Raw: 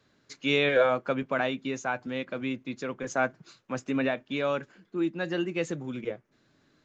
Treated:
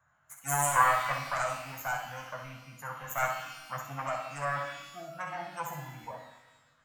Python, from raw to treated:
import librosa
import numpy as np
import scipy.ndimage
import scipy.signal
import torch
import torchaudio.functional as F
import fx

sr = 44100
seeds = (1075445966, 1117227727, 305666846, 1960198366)

y = fx.self_delay(x, sr, depth_ms=0.61)
y = fx.spec_gate(y, sr, threshold_db=-25, keep='strong')
y = fx.curve_eq(y, sr, hz=(130.0, 380.0, 680.0, 1400.0, 4700.0, 6900.0), db=(0, -29, 5, 7, -25, 7))
y = fx.room_early_taps(y, sr, ms=(14, 64), db=(-5.5, -6.0))
y = fx.rev_shimmer(y, sr, seeds[0], rt60_s=1.1, semitones=12, shimmer_db=-8, drr_db=5.0)
y = F.gain(torch.from_numpy(y), -5.0).numpy()